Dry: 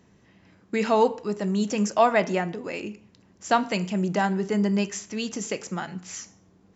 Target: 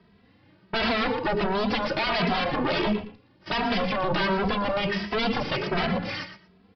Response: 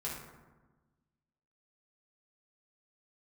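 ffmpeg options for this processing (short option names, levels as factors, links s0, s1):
-filter_complex "[0:a]aemphasis=mode=reproduction:type=75fm,agate=range=0.112:threshold=0.00501:ratio=16:detection=peak,asettb=1/sr,asplit=3[s0][s1][s2];[s0]atrim=end=4.274[s3];[s1]atrim=start=4.27:end=4.68,asetpts=PTS-STARTPTS,afade=t=in:d=0.004:c=qsin,afade=t=out:st=0.406:d=0.004:c=qsin,lowshelf=f=210:g=9.5[s4];[s2]atrim=start=4.676[s5];[s3][s4]acrossfade=d=0.004:c1=hsin:c2=qsin[s6];[s6][s5]acrossfade=d=0.004:c1=qsin:c2=hsin,acrossover=split=160|1200[s7][s8][s9];[s8]acompressor=threshold=0.0282:ratio=6[s10];[s7][s10][s9]amix=inputs=3:normalize=0,alimiter=level_in=1.06:limit=0.0631:level=0:latency=1:release=31,volume=0.944,aeval=exprs='0.0596*sin(PI/2*3.55*val(0)/0.0596)':c=same,acrusher=bits=10:mix=0:aa=0.000001,asplit=2[s11][s12];[s12]aecho=0:1:116|232:0.282|0.0479[s13];[s11][s13]amix=inputs=2:normalize=0,aresample=11025,aresample=44100,asplit=2[s14][s15];[s15]adelay=2.7,afreqshift=1.4[s16];[s14][s16]amix=inputs=2:normalize=1,volume=1.88"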